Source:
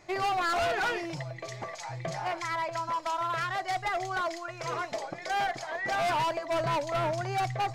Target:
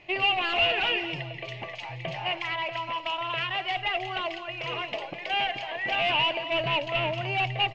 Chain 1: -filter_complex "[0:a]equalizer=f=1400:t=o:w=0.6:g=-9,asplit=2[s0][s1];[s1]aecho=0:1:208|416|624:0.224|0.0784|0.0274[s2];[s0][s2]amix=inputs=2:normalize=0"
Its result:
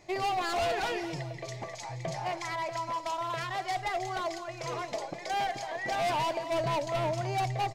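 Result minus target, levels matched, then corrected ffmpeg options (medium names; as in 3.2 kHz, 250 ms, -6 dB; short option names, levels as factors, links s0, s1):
2 kHz band -4.5 dB
-filter_complex "[0:a]lowpass=f=2800:t=q:w=9.5,equalizer=f=1400:t=o:w=0.6:g=-9,asplit=2[s0][s1];[s1]aecho=0:1:208|416|624:0.224|0.0784|0.0274[s2];[s0][s2]amix=inputs=2:normalize=0"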